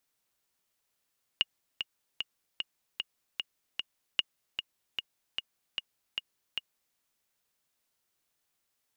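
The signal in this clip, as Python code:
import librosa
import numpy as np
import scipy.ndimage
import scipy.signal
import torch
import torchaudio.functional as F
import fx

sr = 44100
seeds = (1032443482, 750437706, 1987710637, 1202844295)

y = fx.click_track(sr, bpm=151, beats=7, bars=2, hz=2860.0, accent_db=7.5, level_db=-11.5)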